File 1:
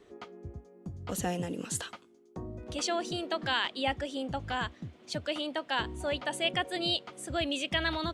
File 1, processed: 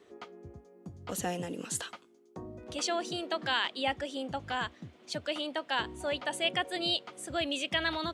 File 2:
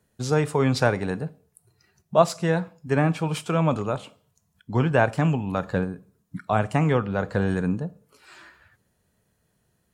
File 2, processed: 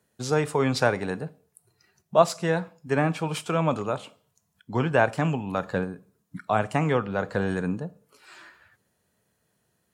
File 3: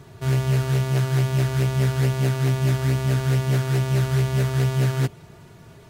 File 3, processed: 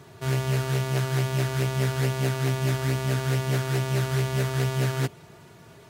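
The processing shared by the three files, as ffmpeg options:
-af "highpass=60,lowshelf=f=180:g=-7.5"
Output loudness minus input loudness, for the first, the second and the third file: -0.5 LU, -2.0 LU, -4.0 LU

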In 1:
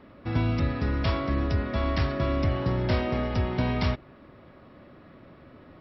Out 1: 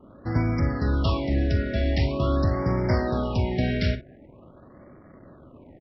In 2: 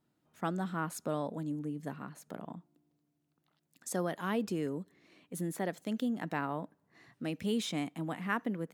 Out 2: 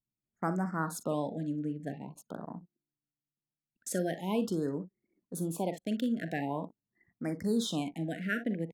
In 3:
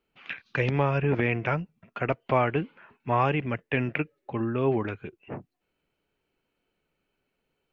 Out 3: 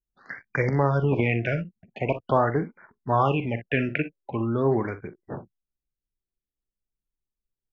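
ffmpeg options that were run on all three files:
-af "aecho=1:1:43|60:0.224|0.188,anlmdn=0.00251,afftfilt=real='re*(1-between(b*sr/1024,960*pow(3400/960,0.5+0.5*sin(2*PI*0.45*pts/sr))/1.41,960*pow(3400/960,0.5+0.5*sin(2*PI*0.45*pts/sr))*1.41))':imag='im*(1-between(b*sr/1024,960*pow(3400/960,0.5+0.5*sin(2*PI*0.45*pts/sr))/1.41,960*pow(3400/960,0.5+0.5*sin(2*PI*0.45*pts/sr))*1.41))':win_size=1024:overlap=0.75,volume=1.26"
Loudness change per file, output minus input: +2.5 LU, +2.0 LU, +2.0 LU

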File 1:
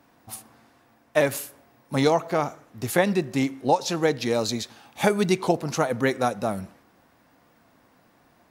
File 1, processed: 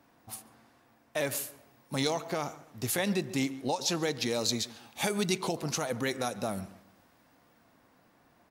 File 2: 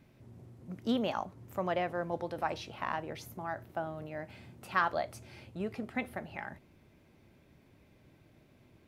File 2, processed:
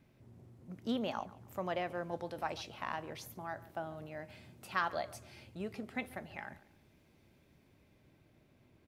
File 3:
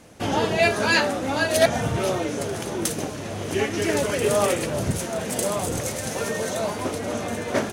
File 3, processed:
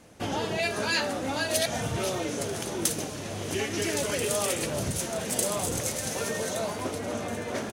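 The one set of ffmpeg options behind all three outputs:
-filter_complex "[0:a]acrossover=split=2800[s0][s1];[s0]alimiter=limit=0.141:level=0:latency=1:release=105[s2];[s1]dynaudnorm=f=130:g=21:m=1.78[s3];[s2][s3]amix=inputs=2:normalize=0,asplit=2[s4][s5];[s5]adelay=141,lowpass=f=3200:p=1,volume=0.119,asplit=2[s6][s7];[s7]adelay=141,lowpass=f=3200:p=1,volume=0.35,asplit=2[s8][s9];[s9]adelay=141,lowpass=f=3200:p=1,volume=0.35[s10];[s4][s6][s8][s10]amix=inputs=4:normalize=0,volume=0.596"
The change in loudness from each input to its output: -7.5 LU, -4.5 LU, -5.0 LU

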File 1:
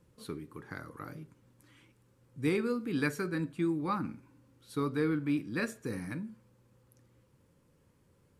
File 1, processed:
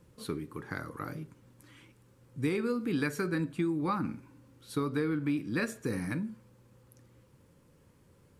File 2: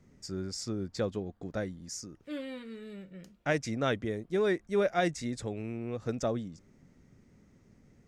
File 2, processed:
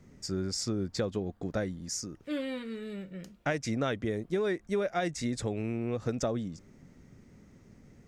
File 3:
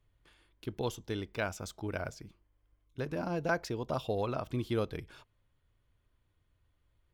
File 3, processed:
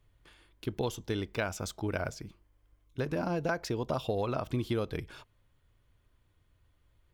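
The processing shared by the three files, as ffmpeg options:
-af "acompressor=threshold=0.0251:ratio=6,volume=1.78"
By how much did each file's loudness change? +1.0 LU, 0.0 LU, +2.0 LU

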